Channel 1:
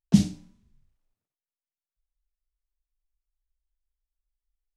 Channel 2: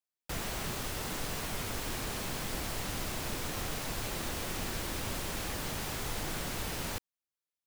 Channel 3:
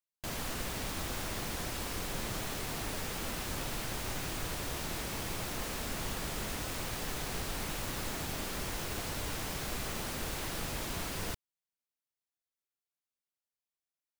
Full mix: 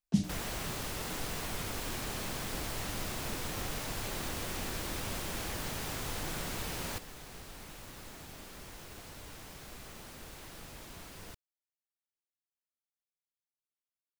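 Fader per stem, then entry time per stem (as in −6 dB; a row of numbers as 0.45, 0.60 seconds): −10.0, −1.5, −11.0 decibels; 0.00, 0.00, 0.00 seconds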